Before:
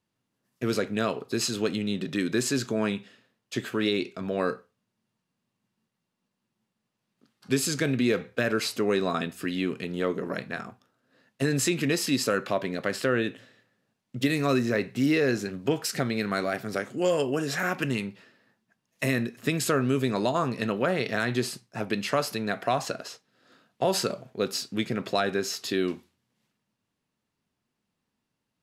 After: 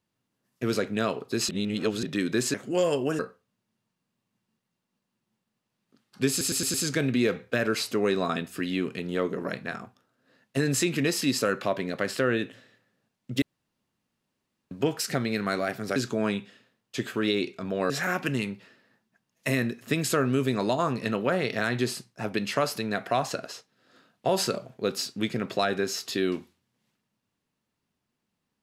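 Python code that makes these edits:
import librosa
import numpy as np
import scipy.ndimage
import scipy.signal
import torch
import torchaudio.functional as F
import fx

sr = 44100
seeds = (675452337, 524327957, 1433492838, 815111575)

y = fx.edit(x, sr, fx.reverse_span(start_s=1.49, length_s=0.54),
    fx.swap(start_s=2.54, length_s=1.94, other_s=16.81, other_length_s=0.65),
    fx.stutter(start_s=7.59, slice_s=0.11, count=5),
    fx.room_tone_fill(start_s=14.27, length_s=1.29), tone=tone)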